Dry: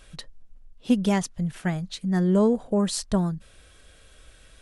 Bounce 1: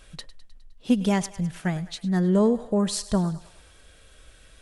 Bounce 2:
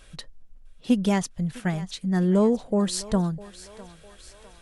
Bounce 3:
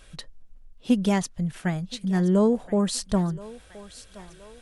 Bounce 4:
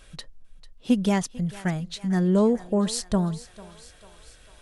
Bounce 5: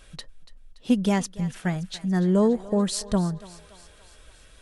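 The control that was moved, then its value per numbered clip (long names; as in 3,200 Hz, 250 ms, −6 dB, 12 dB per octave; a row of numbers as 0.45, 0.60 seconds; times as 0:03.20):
feedback echo with a high-pass in the loop, delay time: 103, 654, 1,023, 446, 286 milliseconds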